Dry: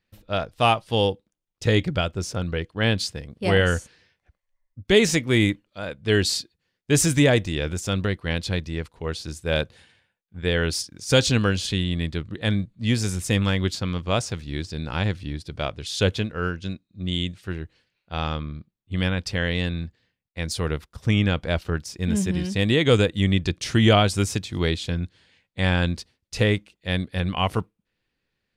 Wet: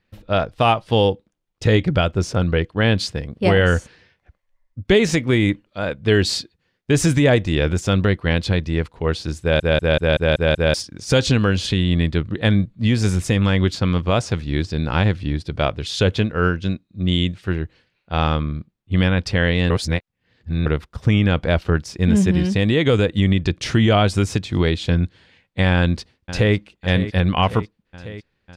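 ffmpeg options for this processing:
ffmpeg -i in.wav -filter_complex "[0:a]asplit=2[link_01][link_02];[link_02]afade=type=in:start_time=25.73:duration=0.01,afade=type=out:start_time=26.55:duration=0.01,aecho=0:1:550|1100|1650|2200|2750|3300|3850|4400:0.158489|0.110943|0.0776598|0.0543618|0.0380533|0.0266373|0.0186461|0.0130523[link_03];[link_01][link_03]amix=inputs=2:normalize=0,asplit=10[link_04][link_05][link_06][link_07][link_08][link_09][link_10][link_11][link_12][link_13];[link_04]atrim=end=9.602[link_14];[link_05]atrim=start=9.408:end=9.602[link_15];[link_06]atrim=start=9.408:end=9.602[link_16];[link_07]atrim=start=9.408:end=9.602[link_17];[link_08]atrim=start=9.408:end=9.602[link_18];[link_09]atrim=start=9.408:end=9.602[link_19];[link_10]atrim=start=9.408:end=9.602[link_20];[link_11]atrim=start=10.738:end=19.702[link_21];[link_12]atrim=start=19.698:end=20.662,asetpts=PTS-STARTPTS,areverse[link_22];[link_13]atrim=start=20.658[link_23];[link_14][link_15]acrossfade=duration=0.004:curve1=hsin:curve2=hsin[link_24];[link_24][link_16]acrossfade=duration=0.004:curve1=hsin:curve2=hsin[link_25];[link_25][link_17]acrossfade=duration=0.004:curve1=hsin:curve2=hsin[link_26];[link_26][link_18]acrossfade=duration=0.004:curve1=hsin:curve2=hsin[link_27];[link_27][link_19]acrossfade=duration=0.004:curve1=hsin:curve2=hsin[link_28];[link_28][link_20]acrossfade=duration=0.004:curve1=hsin:curve2=hsin[link_29];[link_29][link_21]acrossfade=duration=0.004:curve1=hsin:curve2=hsin[link_30];[link_30][link_22]acrossfade=duration=0.004:curve1=hsin:curve2=hsin[link_31];[link_31][link_23]acrossfade=duration=0.004:curve1=hsin:curve2=hsin,alimiter=limit=-13dB:level=0:latency=1:release=168,lowpass=frequency=2800:poles=1,volume=8.5dB" out.wav

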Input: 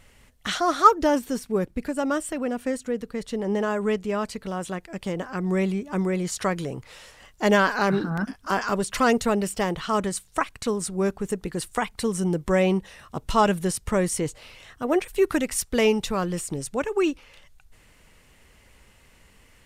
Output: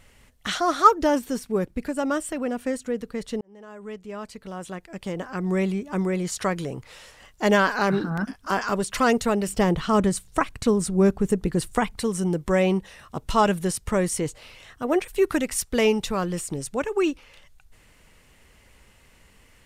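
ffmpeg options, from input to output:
ffmpeg -i in.wav -filter_complex "[0:a]asettb=1/sr,asplit=3[link_01][link_02][link_03];[link_01]atrim=end=9.484[link_04];[link_02]atrim=start=9.48:end=11.99,asetpts=PTS-STARTPTS,afade=type=in:duration=0.004:curve=qsin,afade=type=out:start_time=2.506:duration=0.004:curve=qsin,lowshelf=frequency=410:gain=9[link_05];[link_03]atrim=start=11.986[link_06];[link_04][link_05]acrossfade=duration=0.004:curve1=hsin:curve2=qsin[link_07];[link_07][link_06]acrossfade=duration=0.004:curve1=qsin:curve2=hsin,asplit=2[link_08][link_09];[link_08]atrim=end=3.41,asetpts=PTS-STARTPTS,afade=type=out:start_time=3.406:duration=0.004:curve=hsin[link_10];[link_09]atrim=start=3.41,asetpts=PTS-STARTPTS,afade=type=in:duration=2.05[link_11];[link_10][link_11]concat=n=2:v=0:a=1" out.wav

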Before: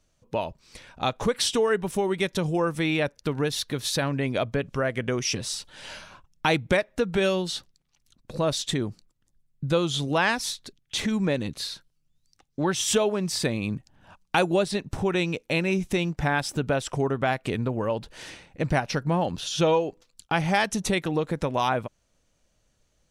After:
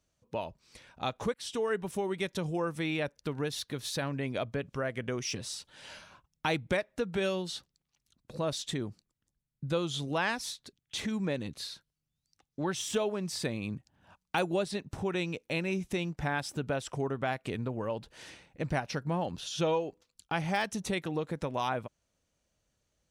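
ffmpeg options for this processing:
ffmpeg -i in.wav -filter_complex "[0:a]asplit=2[link_01][link_02];[link_01]atrim=end=1.34,asetpts=PTS-STARTPTS,afade=type=out:start_time=1.336:duration=0.004:curve=hsin[link_03];[link_02]atrim=start=1.34,asetpts=PTS-STARTPTS,afade=type=in:duration=0.42:curve=qsin[link_04];[link_03][link_04]concat=n=2:v=0:a=1,highpass=41,deesser=0.5,volume=-7.5dB" out.wav

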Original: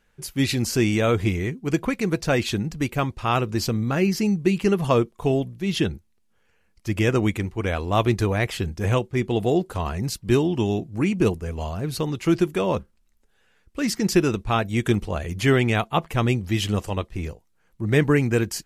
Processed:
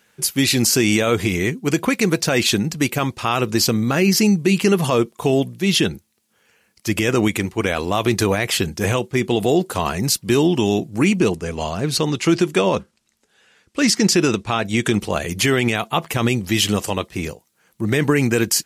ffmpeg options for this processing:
ffmpeg -i in.wav -filter_complex "[0:a]asettb=1/sr,asplit=3[link_01][link_02][link_03];[link_01]atrim=end=11.194[link_04];[link_02]atrim=start=11.19:end=15.01,asetpts=PTS-STARTPTS,afade=type=in:duration=0.004:curve=qsin,afade=type=out:start_time=3.816:duration=0.004:curve=qsin,lowpass=8300[link_05];[link_03]atrim=start=15.006[link_06];[link_04][link_05]acrossfade=duration=0.004:curve1=hsin:curve2=qsin[link_07];[link_07][link_06]acrossfade=duration=0.004:curve1=qsin:curve2=hsin,highpass=140,highshelf=frequency=3000:gain=8.5,alimiter=level_in=12.5dB:limit=-1dB:release=50:level=0:latency=1,volume=-5.5dB" out.wav

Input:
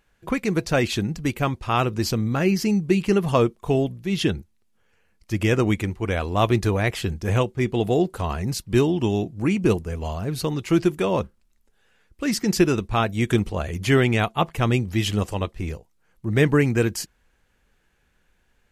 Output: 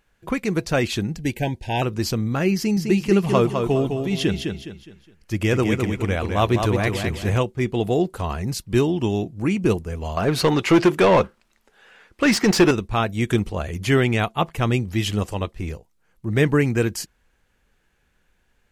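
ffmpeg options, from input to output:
ffmpeg -i in.wav -filter_complex "[0:a]asettb=1/sr,asplit=3[link_01][link_02][link_03];[link_01]atrim=end=1.164[link_04];[link_02]atrim=start=1.16:end=1.82,asetpts=PTS-STARTPTS,afade=type=in:duration=0.004:curve=qsin,afade=type=out:start_time=0.656:duration=0.004:curve=qsin,asuperstop=centerf=1200:order=20:qfactor=2.2[link_05];[link_03]atrim=start=1.816[link_06];[link_04][link_05]acrossfade=duration=0.004:curve1=hsin:curve2=qsin[link_07];[link_07][link_06]acrossfade=duration=0.004:curve1=qsin:curve2=hsin,asettb=1/sr,asplit=3[link_08][link_09][link_10];[link_08]atrim=end=2.564[link_11];[link_09]atrim=start=2.56:end=7.38,asetpts=PTS-STARTPTS,afade=type=in:duration=0.004:curve=qsin,afade=type=out:start_time=4.816:duration=0.004:curve=qsin,aecho=1:1:207|414|621|828:0.531|0.191|0.0688|0.0248,atrim=end_sample=212562[link_12];[link_10]atrim=start=7.376[link_13];[link_11][link_12]acrossfade=duration=0.004:curve1=hsin:curve2=qsin[link_14];[link_14][link_13]acrossfade=duration=0.004:curve1=qsin:curve2=hsin,asettb=1/sr,asplit=3[link_15][link_16][link_17];[link_15]atrim=end=10.174[link_18];[link_16]atrim=start=10.17:end=12.71,asetpts=PTS-STARTPTS,afade=type=in:duration=0.004:curve=qsin,afade=type=out:start_time=2.536:duration=0.004:curve=qsin,asplit=2[link_19][link_20];[link_20]highpass=frequency=720:poles=1,volume=23dB,asoftclip=type=tanh:threshold=-5.5dB[link_21];[link_19][link_21]amix=inputs=2:normalize=0,lowpass=frequency=2200:poles=1,volume=-6dB[link_22];[link_17]atrim=start=12.706[link_23];[link_18][link_22]acrossfade=duration=0.004:curve1=hsin:curve2=qsin[link_24];[link_24][link_23]acrossfade=duration=0.004:curve1=qsin:curve2=hsin" out.wav

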